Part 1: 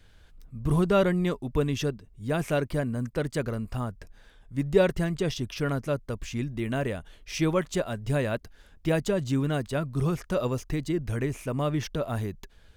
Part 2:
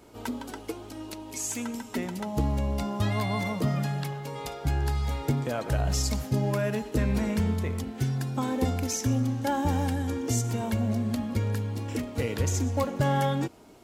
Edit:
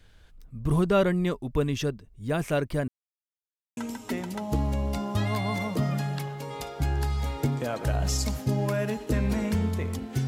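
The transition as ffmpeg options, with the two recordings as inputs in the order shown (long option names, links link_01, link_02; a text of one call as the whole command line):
ffmpeg -i cue0.wav -i cue1.wav -filter_complex "[0:a]apad=whole_dur=10.27,atrim=end=10.27,asplit=2[link_01][link_02];[link_01]atrim=end=2.88,asetpts=PTS-STARTPTS,afade=type=out:start_time=2.876:duration=0.004:curve=hsin[link_03];[link_02]atrim=start=2.88:end=3.77,asetpts=PTS-STARTPTS,volume=0[link_04];[1:a]atrim=start=1.62:end=8.12,asetpts=PTS-STARTPTS,afade=type=in:duration=0.004:curve=hsin[link_05];[link_03][link_04][link_05]concat=n=3:v=0:a=1" out.wav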